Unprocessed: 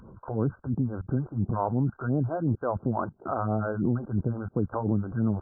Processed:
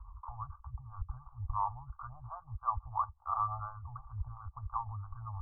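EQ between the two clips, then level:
inverse Chebyshev band-stop filter 180–460 Hz, stop band 70 dB
Chebyshev low-pass with heavy ripple 1,200 Hz, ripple 6 dB
notch filter 570 Hz, Q 12
+15.5 dB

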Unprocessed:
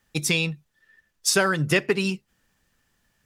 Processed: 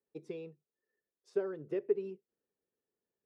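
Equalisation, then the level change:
low-pass with resonance 420 Hz, resonance Q 4.9
first difference
+5.0 dB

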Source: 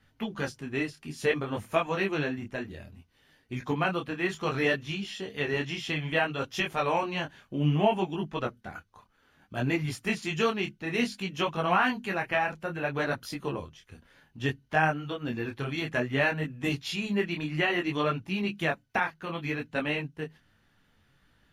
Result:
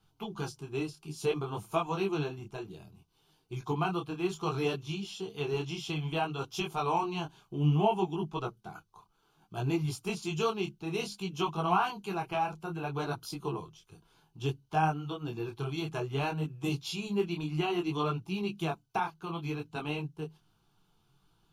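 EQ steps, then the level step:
phaser with its sweep stopped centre 370 Hz, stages 8
0.0 dB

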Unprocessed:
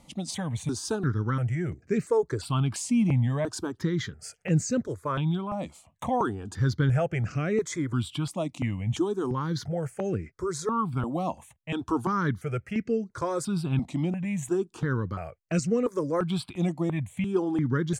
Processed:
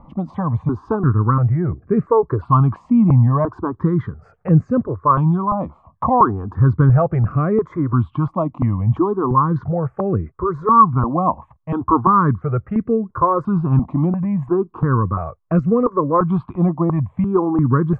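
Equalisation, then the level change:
low-pass with resonance 1,100 Hz, resonance Q 7.1
spectral tilt −2.5 dB per octave
+4.0 dB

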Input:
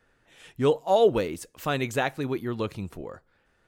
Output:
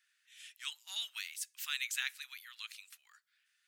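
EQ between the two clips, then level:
Bessel high-pass filter 2,900 Hz, order 6
+1.5 dB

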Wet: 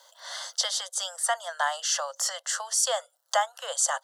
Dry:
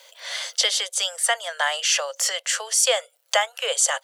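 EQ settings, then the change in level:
high-shelf EQ 8,400 Hz −9 dB
phaser with its sweep stopped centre 1,000 Hz, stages 4
0.0 dB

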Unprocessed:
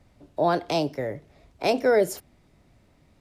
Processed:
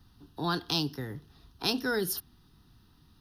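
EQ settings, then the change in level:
high-shelf EQ 3,800 Hz +11 dB
dynamic equaliser 750 Hz, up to −5 dB, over −31 dBFS, Q 0.73
phaser with its sweep stopped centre 2,200 Hz, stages 6
0.0 dB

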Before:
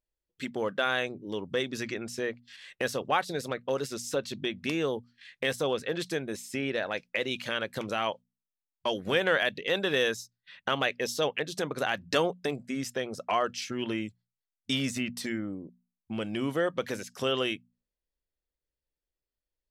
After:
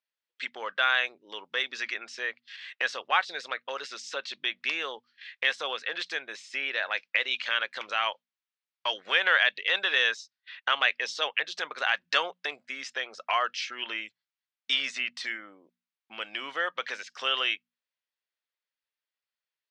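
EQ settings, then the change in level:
high-pass filter 1,300 Hz 12 dB per octave
low-pass filter 5,000 Hz 12 dB per octave
high-frequency loss of the air 89 metres
+8.0 dB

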